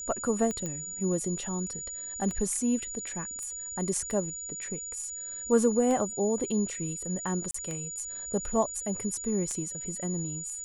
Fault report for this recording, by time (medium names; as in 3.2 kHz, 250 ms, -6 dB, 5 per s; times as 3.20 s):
tick 33 1/3 rpm -21 dBFS
whine 6.9 kHz -36 dBFS
0.66 s: pop -21 dBFS
3.43 s: pop -28 dBFS
7.51–7.54 s: dropout 34 ms